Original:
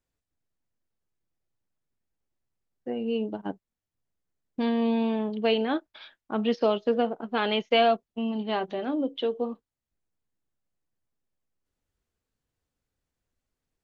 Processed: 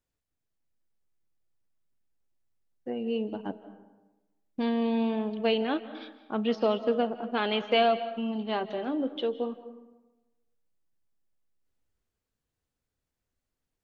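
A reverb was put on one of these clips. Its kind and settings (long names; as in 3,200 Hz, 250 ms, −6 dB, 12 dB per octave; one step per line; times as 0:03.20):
comb and all-pass reverb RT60 1.1 s, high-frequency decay 0.55×, pre-delay 120 ms, DRR 13 dB
level −2 dB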